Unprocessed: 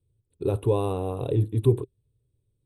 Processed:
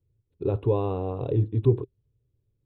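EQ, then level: air absorption 290 m; 0.0 dB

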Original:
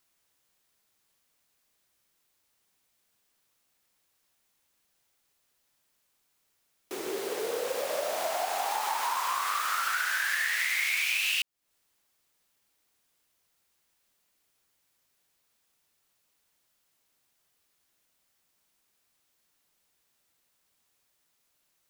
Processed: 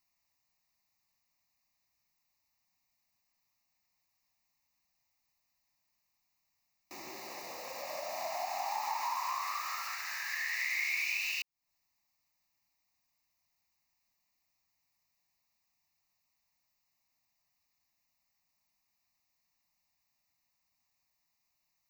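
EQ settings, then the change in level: fixed phaser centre 2200 Hz, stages 8; -4.0 dB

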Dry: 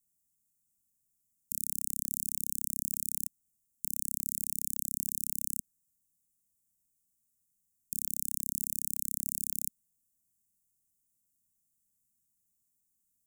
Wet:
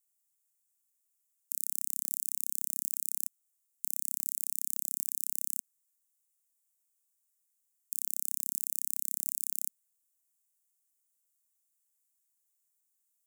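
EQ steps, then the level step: HPF 750 Hz 12 dB/oct; 0.0 dB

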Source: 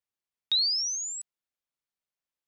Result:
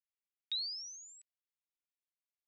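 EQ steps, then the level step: ladder band-pass 2800 Hz, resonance 35%; 0.0 dB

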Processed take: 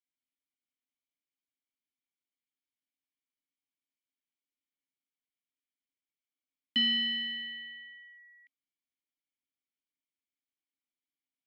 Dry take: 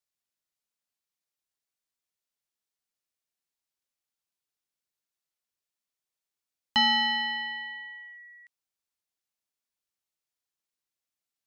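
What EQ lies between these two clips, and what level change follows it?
vowel filter i; +6.5 dB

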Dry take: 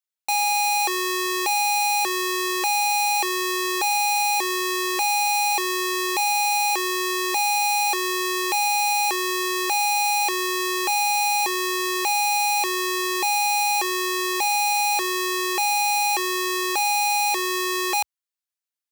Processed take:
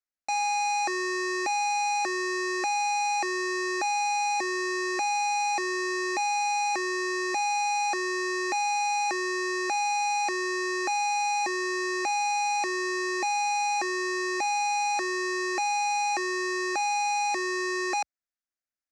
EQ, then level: LPF 6200 Hz 24 dB/oct; low shelf 270 Hz +6 dB; fixed phaser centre 650 Hz, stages 8; 0.0 dB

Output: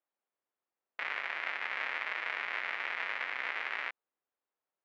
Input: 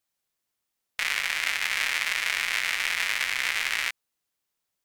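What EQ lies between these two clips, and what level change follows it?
HPF 400 Hz 12 dB/oct; tape spacing loss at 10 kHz 41 dB; high shelf 3200 Hz -10 dB; +2.5 dB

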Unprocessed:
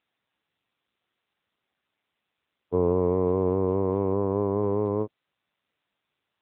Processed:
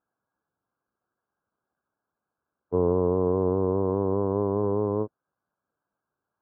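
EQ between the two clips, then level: brick-wall FIR low-pass 1700 Hz; 0.0 dB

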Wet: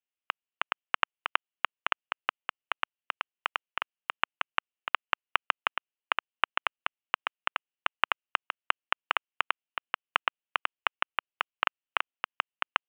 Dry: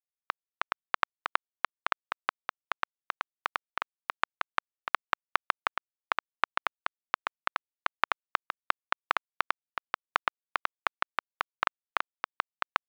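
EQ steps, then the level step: HPF 210 Hz; synth low-pass 2900 Hz, resonance Q 5.8; air absorption 320 m; 0.0 dB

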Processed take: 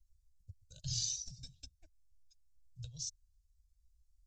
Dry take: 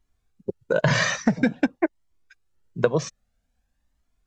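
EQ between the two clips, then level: inverse Chebyshev band-stop 200–2100 Hz, stop band 50 dB; high shelf 4600 Hz -7.5 dB; +1.5 dB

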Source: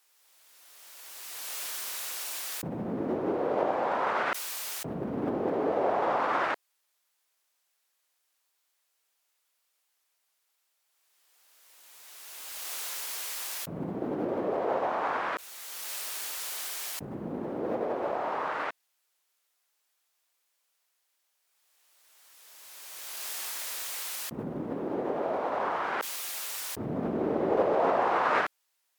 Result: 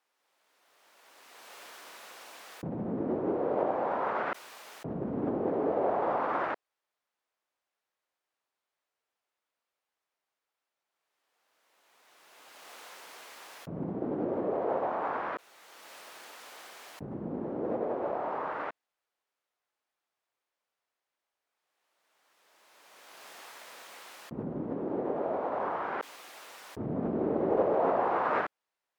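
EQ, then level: LPF 1000 Hz 6 dB/oct; 0.0 dB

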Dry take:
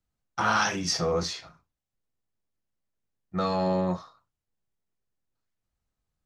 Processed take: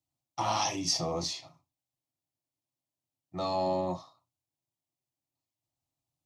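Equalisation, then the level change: HPF 82 Hz; fixed phaser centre 300 Hz, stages 8; 0.0 dB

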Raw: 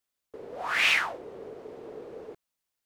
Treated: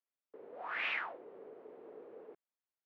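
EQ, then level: BPF 250–2500 Hz; air absorption 140 m; -9.0 dB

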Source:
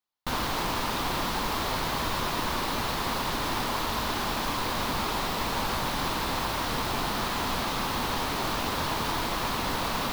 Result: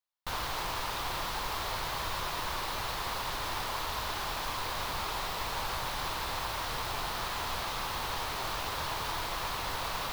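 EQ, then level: bell 240 Hz -13 dB 1.1 oct; -4.5 dB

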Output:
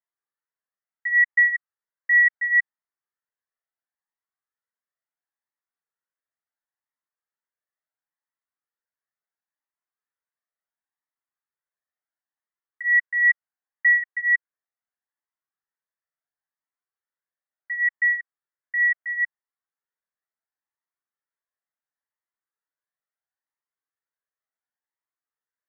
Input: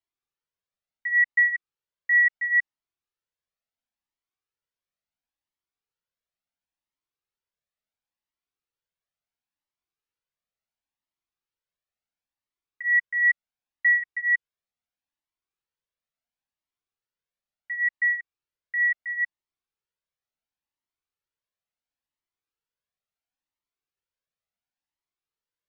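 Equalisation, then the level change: elliptic low-pass 1900 Hz; tilt +4.5 dB/oct; 0.0 dB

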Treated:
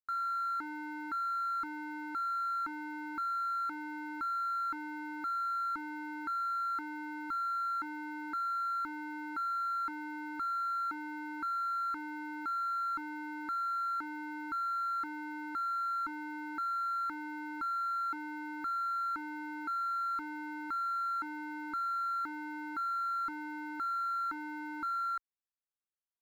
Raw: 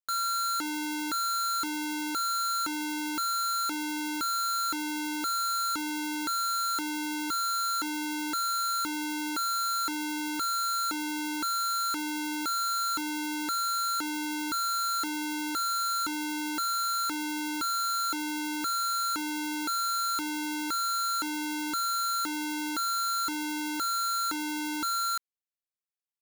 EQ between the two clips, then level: air absorption 480 m; bell 120 Hz -9 dB 2.5 oct; fixed phaser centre 1300 Hz, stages 4; 0.0 dB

